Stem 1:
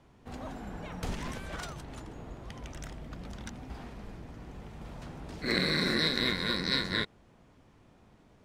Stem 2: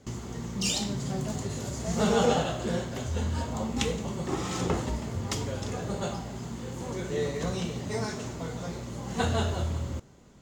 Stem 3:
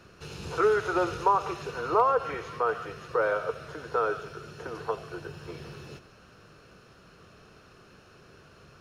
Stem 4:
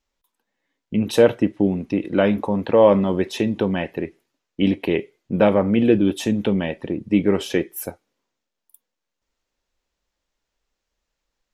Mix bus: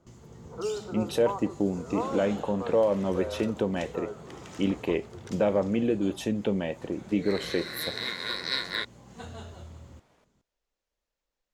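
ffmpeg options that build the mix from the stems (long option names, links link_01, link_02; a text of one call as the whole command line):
ffmpeg -i stem1.wav -i stem2.wav -i stem3.wav -i stem4.wav -filter_complex "[0:a]highpass=480,adelay=1800,volume=0.5dB[link_01];[1:a]volume=-15dB[link_02];[2:a]lowpass=frequency=1000:width=0.5412,lowpass=frequency=1000:width=1.3066,volume=-8dB[link_03];[3:a]equalizer=frequency=550:width=1.5:gain=4.5,alimiter=limit=-6.5dB:level=0:latency=1:release=224,volume=-8.5dB,asplit=2[link_04][link_05];[link_05]apad=whole_len=451691[link_06];[link_01][link_06]sidechaincompress=threshold=-29dB:ratio=8:attack=16:release=1110[link_07];[link_07][link_02][link_03][link_04]amix=inputs=4:normalize=0" out.wav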